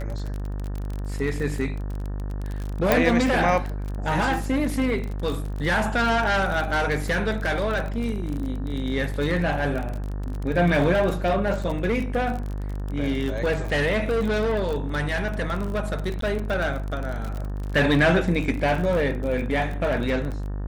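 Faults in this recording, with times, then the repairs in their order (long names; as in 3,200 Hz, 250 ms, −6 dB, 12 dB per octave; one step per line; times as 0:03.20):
mains buzz 50 Hz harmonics 37 −29 dBFS
surface crackle 33 per second −28 dBFS
0:02.92: click
0:16.21–0:16.22: drop-out 13 ms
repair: click removal
hum removal 50 Hz, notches 37
repair the gap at 0:16.21, 13 ms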